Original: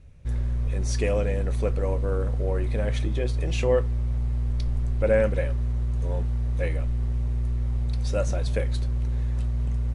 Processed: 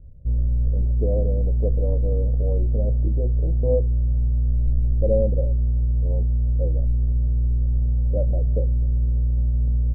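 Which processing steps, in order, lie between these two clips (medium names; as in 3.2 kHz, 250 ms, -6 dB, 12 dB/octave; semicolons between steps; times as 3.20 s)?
steep low-pass 650 Hz 36 dB/octave; bass shelf 85 Hz +8.5 dB; band-stop 380 Hz, Q 12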